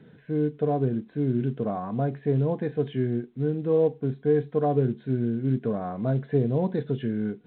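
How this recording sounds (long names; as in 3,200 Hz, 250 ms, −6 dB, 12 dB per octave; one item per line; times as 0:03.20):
mu-law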